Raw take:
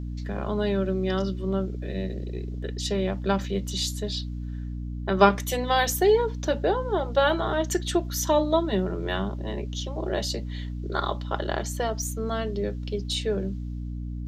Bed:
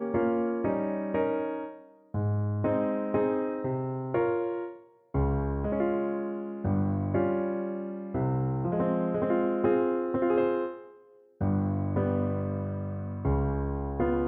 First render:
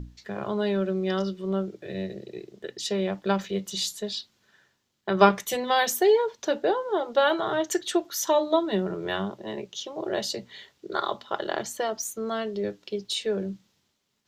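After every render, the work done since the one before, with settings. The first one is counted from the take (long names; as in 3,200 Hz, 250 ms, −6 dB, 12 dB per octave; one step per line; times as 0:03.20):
mains-hum notches 60/120/180/240/300 Hz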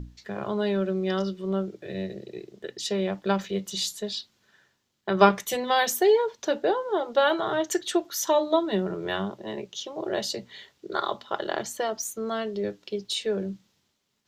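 no processing that can be heard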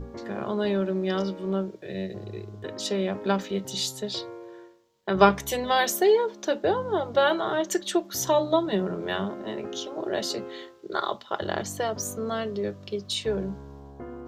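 mix in bed −12.5 dB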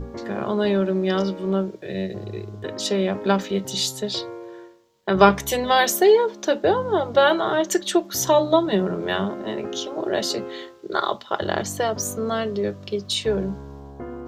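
level +5 dB
brickwall limiter −1 dBFS, peak gain reduction 2.5 dB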